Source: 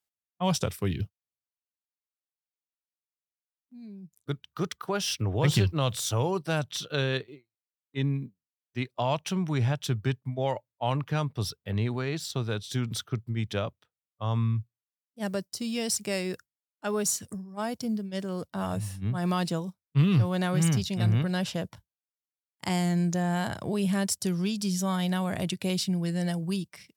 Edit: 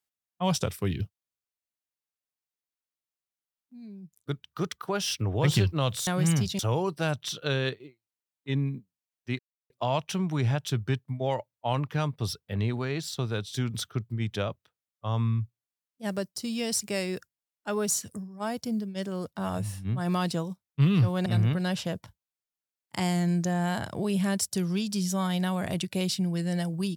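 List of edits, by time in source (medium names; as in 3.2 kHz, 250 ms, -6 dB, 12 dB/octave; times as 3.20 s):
8.87 s: insert silence 0.31 s
20.43–20.95 s: move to 6.07 s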